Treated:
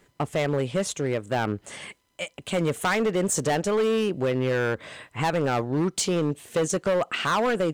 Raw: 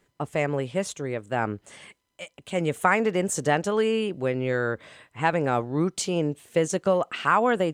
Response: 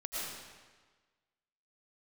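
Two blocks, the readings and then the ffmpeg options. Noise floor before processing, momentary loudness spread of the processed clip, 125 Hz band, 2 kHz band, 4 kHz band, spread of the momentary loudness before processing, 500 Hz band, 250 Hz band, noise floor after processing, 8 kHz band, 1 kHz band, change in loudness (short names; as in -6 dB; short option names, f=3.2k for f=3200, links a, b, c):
-74 dBFS, 11 LU, +1.5 dB, -1.5 dB, +3.5 dB, 10 LU, +0.5 dB, +1.0 dB, -66 dBFS, +3.5 dB, -2.5 dB, 0.0 dB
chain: -filter_complex "[0:a]asplit=2[a][b];[b]acompressor=threshold=-32dB:ratio=6,volume=2dB[c];[a][c]amix=inputs=2:normalize=0,asoftclip=type=hard:threshold=-19dB"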